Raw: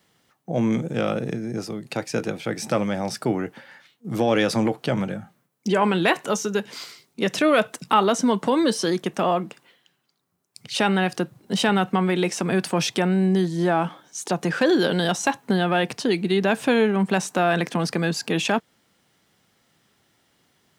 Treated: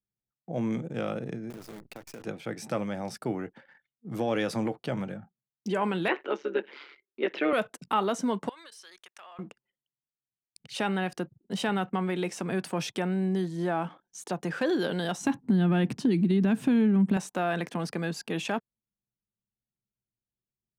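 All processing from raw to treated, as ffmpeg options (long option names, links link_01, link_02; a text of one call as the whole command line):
ffmpeg -i in.wav -filter_complex "[0:a]asettb=1/sr,asplit=3[link_01][link_02][link_03];[link_01]atrim=end=1.504[link_04];[link_02]atrim=start=1.5:end=2.24,asetpts=PTS-STARTPTS,afade=type=in:duration=0.004:curve=qsin,afade=type=out:start_time=0.736:duration=0.004:curve=qsin,bandreject=frequency=60:width_type=h:width=6,bandreject=frequency=120:width_type=h:width=6,bandreject=frequency=180:width_type=h:width=6,acrusher=bits=6:dc=4:mix=0:aa=0.000001,acompressor=threshold=-31dB:ratio=6:attack=3.2:release=140:knee=1:detection=peak[link_05];[link_03]atrim=start=2.236[link_06];[link_04][link_05]acrossfade=duration=0.004:curve1=hsin:curve2=qsin[link_07];[link_07][link_06]acrossfade=duration=0.004:curve1=qsin:curve2=hsin,asettb=1/sr,asplit=3[link_08][link_09][link_10];[link_08]atrim=end=6.084[link_11];[link_09]atrim=start=6.08:end=7.53,asetpts=PTS-STARTPTS,afade=type=in:duration=0.004:curve=qsin,afade=type=out:start_time=1.446:duration=0.004:curve=qsin,acontrast=78,tremolo=f=140:d=0.788,highpass=frequency=300:width=0.5412,highpass=frequency=300:width=1.3066,equalizer=frequency=370:width_type=q:width=4:gain=5,equalizer=frequency=690:width_type=q:width=4:gain=-7,equalizer=frequency=1100:width_type=q:width=4:gain=-4,equalizer=frequency=2200:width_type=q:width=4:gain=3,lowpass=frequency=3300:width=0.5412,lowpass=frequency=3300:width=1.3066[link_12];[link_10]atrim=start=7.526[link_13];[link_11][link_12]acrossfade=duration=0.004:curve1=hsin:curve2=qsin[link_14];[link_14][link_13]acrossfade=duration=0.004:curve1=qsin:curve2=hsin,asettb=1/sr,asplit=3[link_15][link_16][link_17];[link_15]atrim=end=8.494[link_18];[link_16]atrim=start=8.49:end=9.39,asetpts=PTS-STARTPTS,afade=type=in:duration=0.004:curve=qsin,afade=type=out:start_time=0.896:duration=0.004:curve=qsin,highpass=1400,acompressor=threshold=-38dB:ratio=4:attack=3.2:release=140:knee=1:detection=peak[link_19];[link_17]atrim=start=9.386[link_20];[link_18][link_19]acrossfade=duration=0.004:curve1=hsin:curve2=qsin[link_21];[link_21][link_20]acrossfade=duration=0.004:curve1=qsin:curve2=hsin,asettb=1/sr,asplit=3[link_22][link_23][link_24];[link_22]atrim=end=15.214[link_25];[link_23]atrim=start=15.21:end=17.17,asetpts=PTS-STARTPTS,afade=type=in:duration=0.004:curve=qsin,afade=type=out:start_time=1.956:duration=0.004:curve=qsin,lowshelf=frequency=370:width_type=q:width=1.5:gain=11.5,acompressor=threshold=-12dB:ratio=4:attack=3.2:release=140:knee=1:detection=peak[link_26];[link_24]atrim=start=17.166[link_27];[link_25][link_26]acrossfade=duration=0.004:curve1=hsin:curve2=qsin[link_28];[link_28][link_27]acrossfade=duration=0.004:curve1=qsin:curve2=hsin,anlmdn=0.0398,equalizer=frequency=5100:width_type=o:width=1.6:gain=-3.5,volume=-8dB" out.wav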